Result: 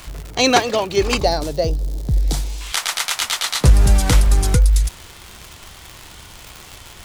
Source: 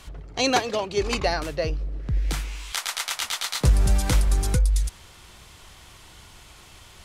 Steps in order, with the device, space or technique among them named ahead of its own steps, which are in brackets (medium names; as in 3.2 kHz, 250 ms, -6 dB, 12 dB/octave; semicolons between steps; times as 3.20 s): vinyl LP (wow and flutter; crackle 150 per s -31 dBFS; white noise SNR 41 dB); 1.18–2.61 s: high-order bell 1.8 kHz -11 dB; trim +7 dB